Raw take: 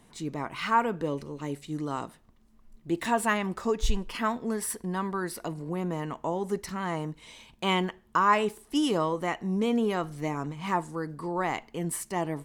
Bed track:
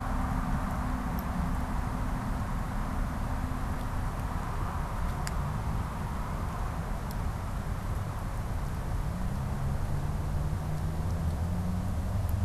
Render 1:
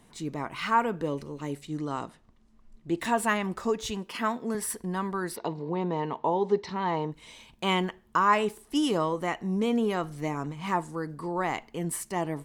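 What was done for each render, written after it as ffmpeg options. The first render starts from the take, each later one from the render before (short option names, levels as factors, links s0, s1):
-filter_complex "[0:a]asettb=1/sr,asplit=3[s0][s1][s2];[s0]atrim=end=1.674[s3];[s1]atrim=start=1.67:end=3,asetpts=PTS-STARTPTS,afade=t=in:d=0.004:c=qsin,afade=t=out:st=1.326:d=0.004:c=qsin,lowpass=8200[s4];[s2]atrim=start=2.996[s5];[s3][s4]acrossfade=d=0.004:c1=hsin:c2=qsin[s6];[s6][s5]acrossfade=d=0.004:c1=qsin:c2=hsin,asettb=1/sr,asplit=3[s7][s8][s9];[s7]atrim=end=3.784[s10];[s8]atrim=start=3.78:end=4.55,asetpts=PTS-STARTPTS,afade=t=in:d=0.004:c=qsin,afade=t=out:st=0.766:d=0.004:c=qsin,highpass=150[s11];[s9]atrim=start=4.546[s12];[s10][s11]acrossfade=d=0.004:c1=hsin:c2=qsin[s13];[s13][s12]acrossfade=d=0.004:c1=qsin:c2=hsin,asplit=3[s14][s15][s16];[s14]afade=t=out:st=5.35:d=0.02[s17];[s15]highpass=100,equalizer=f=430:t=q:w=4:g=8,equalizer=f=900:t=q:w=4:g=9,equalizer=f=1400:t=q:w=4:g=-5,equalizer=f=3800:t=q:w=4:g=7,lowpass=f=5000:w=0.5412,lowpass=f=5000:w=1.3066,afade=t=in:st=5.35:d=0.02,afade=t=out:st=7.11:d=0.02[s18];[s16]afade=t=in:st=7.11:d=0.02[s19];[s17][s18][s19]amix=inputs=3:normalize=0"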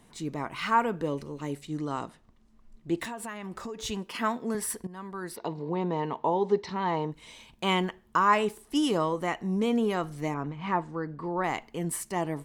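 -filter_complex "[0:a]asettb=1/sr,asplit=3[s0][s1][s2];[s0]atrim=end=3.044[s3];[s1]atrim=start=3.04:end=3.79,asetpts=PTS-STARTPTS,afade=t=in:d=0.004:c=qsin,afade=t=out:st=0.746:d=0.004:c=qsin,acompressor=threshold=0.02:ratio=6:attack=3.2:release=140:knee=1:detection=peak[s4];[s2]atrim=start=3.786[s5];[s3][s4]acrossfade=d=0.004:c1=hsin:c2=qsin[s6];[s6][s5]acrossfade=d=0.004:c1=qsin:c2=hsin,asettb=1/sr,asplit=3[s7][s8][s9];[s7]atrim=end=10.344[s10];[s8]atrim=start=10.34:end=11.44,asetpts=PTS-STARTPTS,afade=t=in:d=0.004:c=qsin,afade=t=out:st=1.096:d=0.004:c=qsin,lowpass=3100[s11];[s9]atrim=start=11.436[s12];[s10][s11]acrossfade=d=0.004:c1=hsin:c2=qsin[s13];[s13][s12]acrossfade=d=0.004:c1=qsin:c2=hsin,asplit=2[s14][s15];[s14]atrim=end=4.87,asetpts=PTS-STARTPTS,afade=t=out:st=4.866:d=0.004:c=hsin:silence=0.158489[s16];[s15]atrim=start=4.87,asetpts=PTS-STARTPTS,afade=t=in:d=0.76:silence=0.158489[s17];[s16][s17]concat=n=2:v=0:a=1"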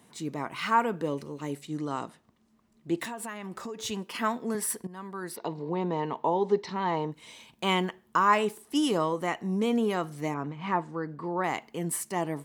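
-af "highpass=120,highshelf=f=11000:g=5"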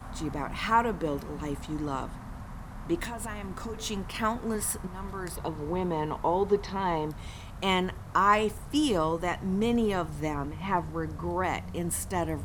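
-filter_complex "[1:a]volume=0.355[s0];[0:a][s0]amix=inputs=2:normalize=0"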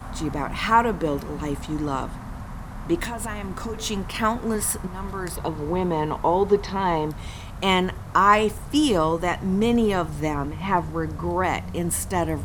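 -af "volume=2"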